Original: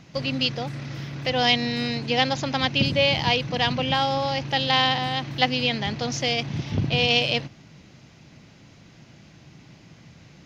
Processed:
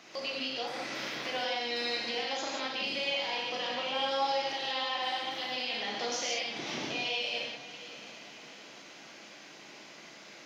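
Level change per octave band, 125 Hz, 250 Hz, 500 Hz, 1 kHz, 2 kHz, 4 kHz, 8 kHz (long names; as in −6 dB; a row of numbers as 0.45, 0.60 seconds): −28.5 dB, −16.0 dB, −9.0 dB, −9.0 dB, −8.5 dB, −9.0 dB, can't be measured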